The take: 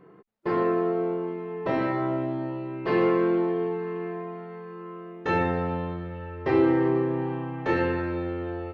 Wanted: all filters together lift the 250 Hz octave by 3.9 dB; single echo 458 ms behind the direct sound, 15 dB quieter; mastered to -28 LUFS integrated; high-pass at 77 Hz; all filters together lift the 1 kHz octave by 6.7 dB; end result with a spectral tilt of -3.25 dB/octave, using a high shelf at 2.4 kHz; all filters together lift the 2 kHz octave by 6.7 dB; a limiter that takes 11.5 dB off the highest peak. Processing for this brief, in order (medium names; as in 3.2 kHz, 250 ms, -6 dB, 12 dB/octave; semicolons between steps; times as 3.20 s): high-pass 77 Hz; peaking EQ 250 Hz +5.5 dB; peaking EQ 1 kHz +7 dB; peaking EQ 2 kHz +8.5 dB; treble shelf 2.4 kHz -6.5 dB; peak limiter -18.5 dBFS; delay 458 ms -15 dB